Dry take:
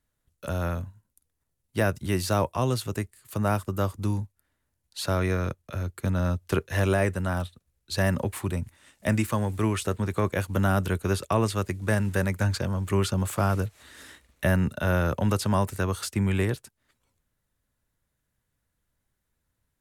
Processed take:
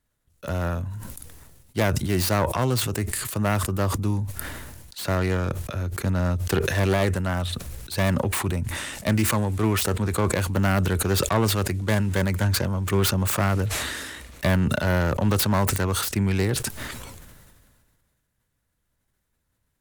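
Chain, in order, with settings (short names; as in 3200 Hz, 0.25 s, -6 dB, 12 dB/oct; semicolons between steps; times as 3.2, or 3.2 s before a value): self-modulated delay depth 0.17 ms; sustainer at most 30 dB/s; gain +2 dB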